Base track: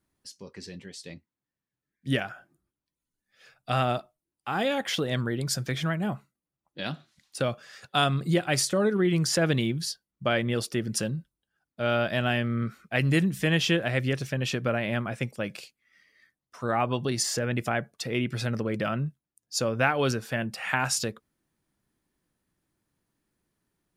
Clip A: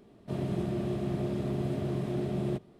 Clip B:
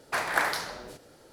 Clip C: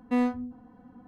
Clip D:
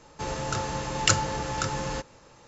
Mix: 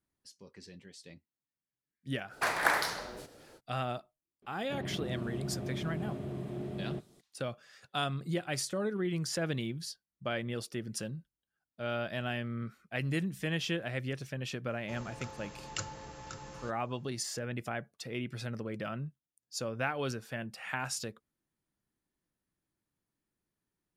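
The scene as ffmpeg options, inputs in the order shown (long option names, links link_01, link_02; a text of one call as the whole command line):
ffmpeg -i bed.wav -i cue0.wav -i cue1.wav -i cue2.wav -i cue3.wav -filter_complex "[0:a]volume=-9.5dB[link_01];[1:a]acrossover=split=4700[link_02][link_03];[link_03]adelay=340[link_04];[link_02][link_04]amix=inputs=2:normalize=0[link_05];[2:a]atrim=end=1.32,asetpts=PTS-STARTPTS,volume=-1.5dB,afade=type=in:duration=0.05,afade=type=out:start_time=1.27:duration=0.05,adelay=2290[link_06];[link_05]atrim=end=2.79,asetpts=PTS-STARTPTS,volume=-7dB,afade=type=in:duration=0.004:curve=hsin,afade=type=out:start_time=2.786:duration=0.004:curve=hsin,adelay=4420[link_07];[4:a]atrim=end=2.47,asetpts=PTS-STARTPTS,volume=-16.5dB,afade=type=in:duration=0.004:curve=hsin,afade=type=out:start_time=2.466:duration=0.004:curve=hsin,adelay=14690[link_08];[link_01][link_06][link_07][link_08]amix=inputs=4:normalize=0" out.wav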